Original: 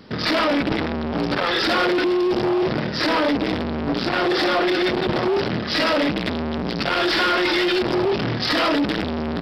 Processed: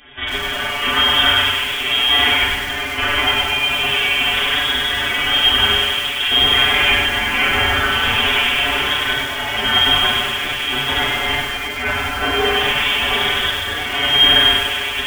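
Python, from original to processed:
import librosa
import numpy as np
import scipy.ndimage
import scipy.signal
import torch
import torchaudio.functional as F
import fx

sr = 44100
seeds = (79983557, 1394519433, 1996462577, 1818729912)

y = fx.tilt_shelf(x, sr, db=-7.5, hz=970.0)
y = fx.hum_notches(y, sr, base_hz=60, count=7)
y = y + 0.9 * np.pad(y, (int(6.5 * sr / 1000.0), 0))[:len(y)]
y = fx.over_compress(y, sr, threshold_db=-19.0, ratio=-0.5)
y = fx.stretch_vocoder(y, sr, factor=1.6)
y = fx.room_shoebox(y, sr, seeds[0], volume_m3=1700.0, walls='mixed', distance_m=3.7)
y = fx.freq_invert(y, sr, carrier_hz=3500)
y = fx.echo_crushed(y, sr, ms=98, feedback_pct=55, bits=4, wet_db=-6)
y = y * librosa.db_to_amplitude(-3.5)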